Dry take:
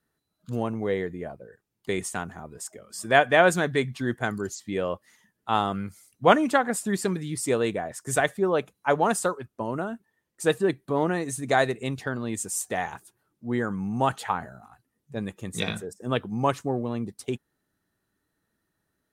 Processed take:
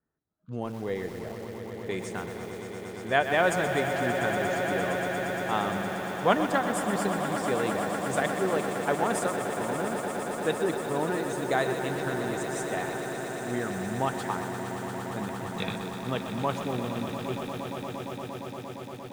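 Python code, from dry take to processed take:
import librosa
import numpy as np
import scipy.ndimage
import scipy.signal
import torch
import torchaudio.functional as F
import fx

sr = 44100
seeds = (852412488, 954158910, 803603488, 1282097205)

y = fx.env_lowpass(x, sr, base_hz=1400.0, full_db=-22.5)
y = fx.echo_swell(y, sr, ms=116, loudest=8, wet_db=-12.5)
y = fx.echo_crushed(y, sr, ms=127, feedback_pct=80, bits=6, wet_db=-9.5)
y = F.gain(torch.from_numpy(y), -5.5).numpy()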